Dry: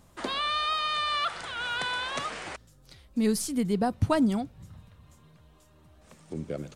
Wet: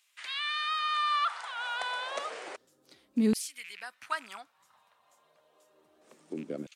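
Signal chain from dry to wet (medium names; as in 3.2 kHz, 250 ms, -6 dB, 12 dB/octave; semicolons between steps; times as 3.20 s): rattle on loud lows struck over -31 dBFS, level -34 dBFS; LFO high-pass saw down 0.3 Hz 230–2600 Hz; trim -5.5 dB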